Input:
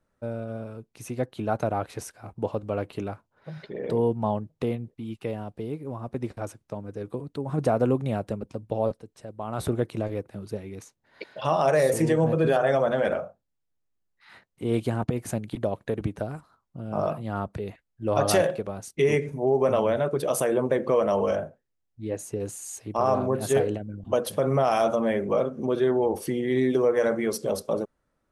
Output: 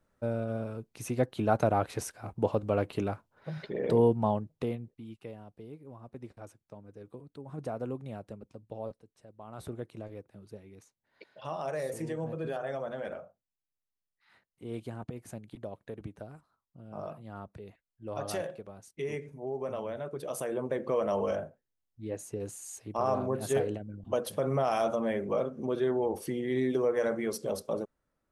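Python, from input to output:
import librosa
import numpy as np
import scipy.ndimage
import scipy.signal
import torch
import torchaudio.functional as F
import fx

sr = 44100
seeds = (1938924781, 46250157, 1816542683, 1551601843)

y = fx.gain(x, sr, db=fx.line((4.03, 0.5), (4.84, -7.0), (5.36, -13.5), (19.92, -13.5), (21.13, -6.0)))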